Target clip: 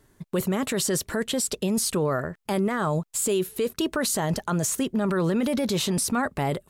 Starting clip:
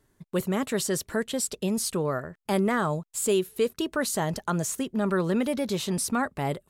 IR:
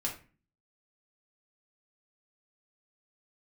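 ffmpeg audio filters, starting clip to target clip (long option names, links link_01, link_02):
-af "alimiter=limit=-24dB:level=0:latency=1:release=19,volume=7dB"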